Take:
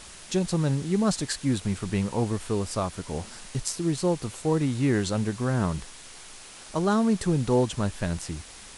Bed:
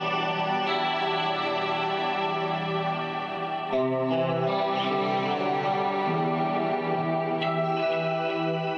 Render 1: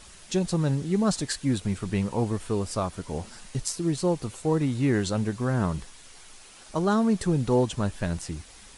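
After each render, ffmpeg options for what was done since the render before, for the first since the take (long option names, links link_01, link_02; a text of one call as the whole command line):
ffmpeg -i in.wav -af "afftdn=noise_reduction=6:noise_floor=-46" out.wav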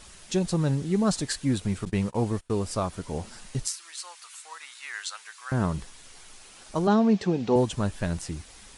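ffmpeg -i in.wav -filter_complex "[0:a]asettb=1/sr,asplit=3[link_01][link_02][link_03];[link_01]atrim=end=1.854[link_04];[link_02]atrim=start=1.85:end=2.5,asetpts=PTS-STARTPTS,afade=type=in:duration=0.004:curve=qsin,afade=type=out:start_time=0.646:duration=0.004:curve=qsin,agate=range=-27dB:threshold=-34dB:ratio=16:release=100:detection=peak[link_05];[link_03]atrim=start=2.496[link_06];[link_04][link_05]acrossfade=duration=0.004:curve1=hsin:curve2=qsin[link_07];[link_07][link_06]acrossfade=duration=0.004:curve1=qsin:curve2=hsin,asettb=1/sr,asplit=3[link_08][link_09][link_10];[link_08]atrim=end=3.674[link_11];[link_09]atrim=start=3.67:end=5.52,asetpts=PTS-STARTPTS,afade=type=in:duration=0.004:curve=qsin,afade=type=out:start_time=1.846:duration=0.004:curve=qsin,highpass=frequency=1200:width=0.5412,highpass=frequency=1200:width=1.3066[link_12];[link_10]atrim=start=5.516[link_13];[link_11][link_12]acrossfade=duration=0.004:curve1=hsin:curve2=qsin[link_14];[link_14][link_13]acrossfade=duration=0.004:curve1=qsin:curve2=hsin,asettb=1/sr,asplit=3[link_15][link_16][link_17];[link_15]atrim=end=6.874[link_18];[link_16]atrim=start=6.87:end=7.56,asetpts=PTS-STARTPTS,afade=type=in:duration=0.004:curve=qsin,afade=type=out:start_time=0.686:duration=0.004:curve=qsin,highpass=130,equalizer=frequency=140:width_type=q:width=4:gain=-10,equalizer=frequency=200:width_type=q:width=4:gain=5,equalizer=frequency=430:width_type=q:width=4:gain=3,equalizer=frequency=750:width_type=q:width=4:gain=6,equalizer=frequency=1300:width_type=q:width=4:gain=-4,equalizer=frequency=2600:width_type=q:width=4:gain=4,lowpass=frequency=5900:width=0.5412,lowpass=frequency=5900:width=1.3066[link_19];[link_17]atrim=start=7.556[link_20];[link_18][link_19]acrossfade=duration=0.004:curve1=hsin:curve2=qsin[link_21];[link_21][link_20]acrossfade=duration=0.004:curve1=qsin:curve2=hsin" out.wav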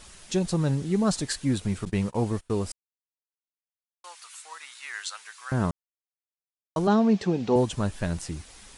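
ffmpeg -i in.wav -filter_complex "[0:a]asplit=5[link_01][link_02][link_03][link_04][link_05];[link_01]atrim=end=2.72,asetpts=PTS-STARTPTS,afade=type=out:start_time=2.716:duration=0.004:curve=hsin[link_06];[link_02]atrim=start=2.72:end=4.04,asetpts=PTS-STARTPTS,volume=0[link_07];[link_03]atrim=start=4.04:end=5.71,asetpts=PTS-STARTPTS,afade=type=in:duration=0.004:curve=hsin,afade=type=out:start_time=1.666:duration=0.004:curve=hsin[link_08];[link_04]atrim=start=5.71:end=6.76,asetpts=PTS-STARTPTS,volume=0[link_09];[link_05]atrim=start=6.76,asetpts=PTS-STARTPTS,afade=type=in:duration=0.004:curve=hsin[link_10];[link_06][link_07][link_08][link_09][link_10]concat=n=5:v=0:a=1" out.wav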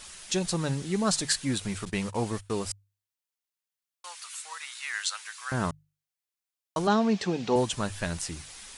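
ffmpeg -i in.wav -af "tiltshelf=frequency=830:gain=-5,bandreject=frequency=50:width_type=h:width=6,bandreject=frequency=100:width_type=h:width=6,bandreject=frequency=150:width_type=h:width=6" out.wav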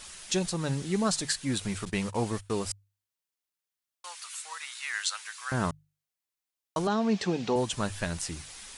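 ffmpeg -i in.wav -af "alimiter=limit=-16.5dB:level=0:latency=1:release=275" out.wav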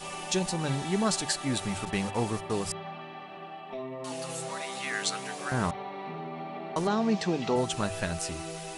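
ffmpeg -i in.wav -i bed.wav -filter_complex "[1:a]volume=-12.5dB[link_01];[0:a][link_01]amix=inputs=2:normalize=0" out.wav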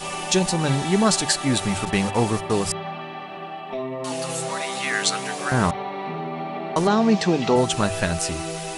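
ffmpeg -i in.wav -af "volume=8.5dB" out.wav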